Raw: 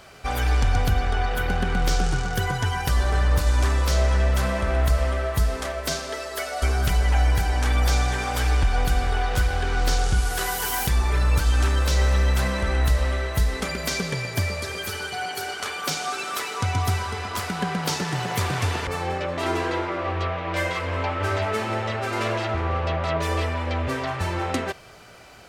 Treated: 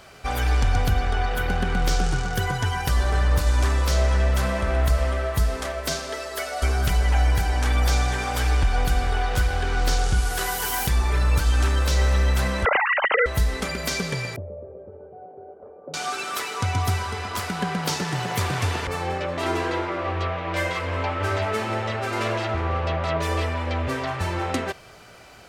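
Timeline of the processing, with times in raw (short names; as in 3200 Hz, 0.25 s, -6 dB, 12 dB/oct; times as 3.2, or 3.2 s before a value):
12.65–13.26 sine-wave speech
14.36–15.94 ladder low-pass 600 Hz, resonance 65%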